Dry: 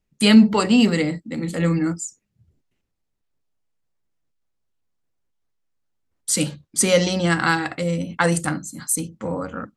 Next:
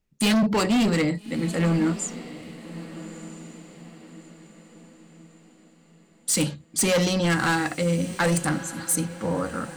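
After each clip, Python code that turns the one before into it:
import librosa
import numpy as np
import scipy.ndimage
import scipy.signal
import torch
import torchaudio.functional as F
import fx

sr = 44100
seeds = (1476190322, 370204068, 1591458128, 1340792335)

y = np.clip(x, -10.0 ** (-18.0 / 20.0), 10.0 ** (-18.0 / 20.0))
y = fx.echo_diffused(y, sr, ms=1279, feedback_pct=42, wet_db=-15)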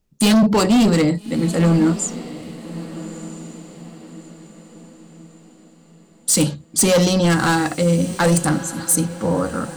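y = fx.peak_eq(x, sr, hz=2100.0, db=-6.5, octaves=1.1)
y = y * 10.0 ** (7.0 / 20.0)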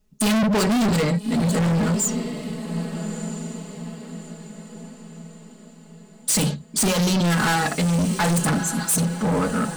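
y = x + 0.98 * np.pad(x, (int(4.7 * sr / 1000.0), 0))[:len(x)]
y = np.clip(10.0 ** (18.0 / 20.0) * y, -1.0, 1.0) / 10.0 ** (18.0 / 20.0)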